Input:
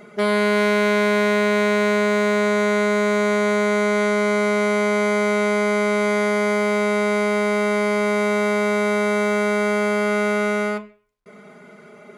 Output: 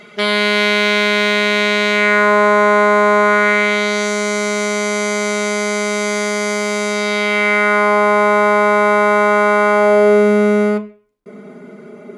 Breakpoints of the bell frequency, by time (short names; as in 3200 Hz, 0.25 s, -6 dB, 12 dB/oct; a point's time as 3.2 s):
bell +14 dB 1.8 oct
1.9 s 3400 Hz
2.33 s 1000 Hz
3.2 s 1000 Hz
4.1 s 6400 Hz
6.86 s 6400 Hz
7.94 s 1000 Hz
9.71 s 1000 Hz
10.31 s 290 Hz